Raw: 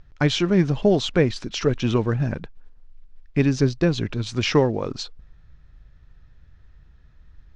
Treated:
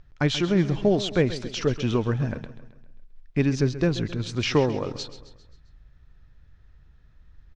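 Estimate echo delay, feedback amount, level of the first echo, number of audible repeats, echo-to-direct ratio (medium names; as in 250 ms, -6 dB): 133 ms, 50%, -14.0 dB, 4, -12.5 dB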